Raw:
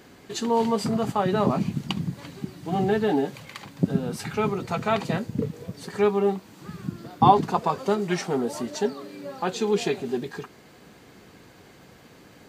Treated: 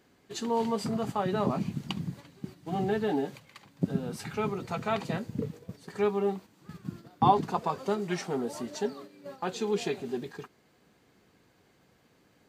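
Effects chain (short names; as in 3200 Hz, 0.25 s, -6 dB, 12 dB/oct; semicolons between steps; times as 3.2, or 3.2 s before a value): gate -37 dBFS, range -8 dB; gain -6 dB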